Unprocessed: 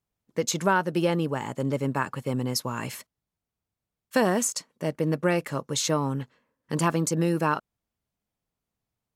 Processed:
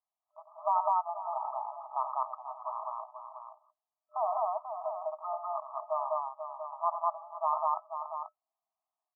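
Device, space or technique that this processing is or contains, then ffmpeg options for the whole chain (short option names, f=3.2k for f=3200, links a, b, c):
ducked delay: -filter_complex "[0:a]asplit=3[a][b][c];[b]adelay=488,volume=-8.5dB[d];[c]apad=whole_len=425124[e];[d][e]sidechaincompress=threshold=-26dB:ratio=8:attack=16:release=262[f];[a][f]amix=inputs=2:normalize=0,afftfilt=real='re*between(b*sr/4096,610,1300)':imag='im*between(b*sr/4096,610,1300)':win_size=4096:overlap=0.75,aecho=1:1:90.38|201.2:0.355|1,volume=-2.5dB"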